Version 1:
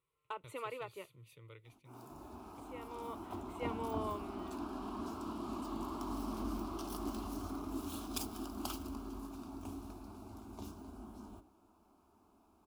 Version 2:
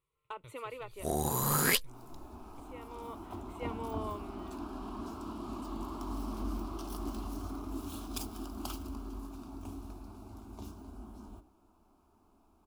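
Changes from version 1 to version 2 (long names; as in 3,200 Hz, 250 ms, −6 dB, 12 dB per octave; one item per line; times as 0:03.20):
first sound: unmuted
master: remove high-pass filter 97 Hz 6 dB per octave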